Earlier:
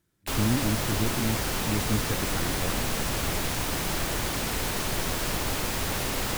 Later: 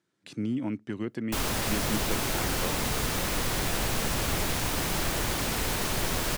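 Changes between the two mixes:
speech: add band-pass 210–6500 Hz; background: entry +1.05 s

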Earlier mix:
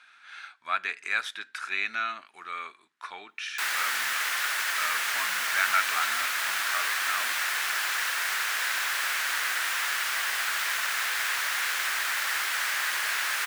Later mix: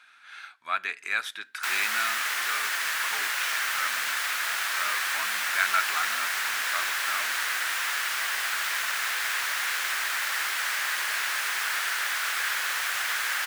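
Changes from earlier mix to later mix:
speech: remove low-pass 9.2 kHz 12 dB/octave; background: entry -1.95 s

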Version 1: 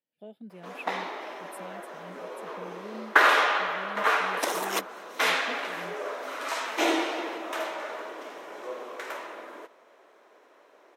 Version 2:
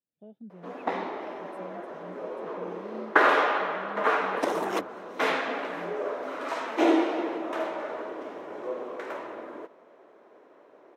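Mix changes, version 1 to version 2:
speech -9.0 dB; master: add tilt EQ -4 dB/octave

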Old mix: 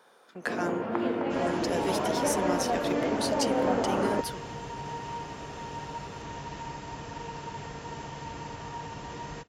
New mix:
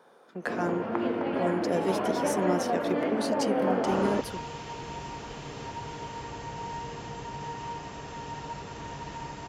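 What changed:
speech: add tilt shelf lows +5.5 dB, about 1.2 kHz; second sound: entry +2.55 s

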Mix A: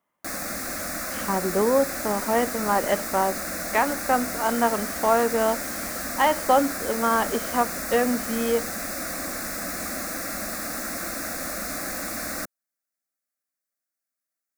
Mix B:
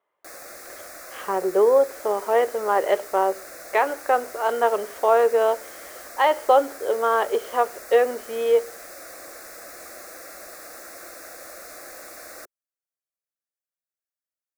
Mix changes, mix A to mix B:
background -10.0 dB; master: add resonant low shelf 310 Hz -9 dB, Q 3

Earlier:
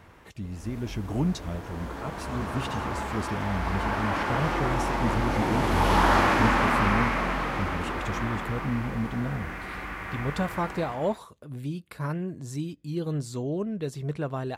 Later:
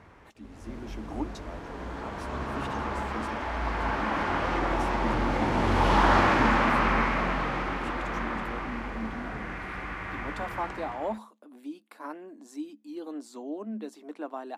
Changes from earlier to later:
speech: add rippled Chebyshev high-pass 210 Hz, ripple 9 dB; background: add distance through air 62 m

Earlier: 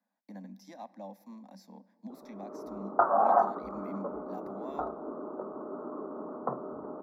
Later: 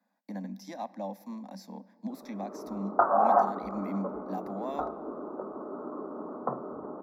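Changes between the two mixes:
speech +7.5 dB; background: send on

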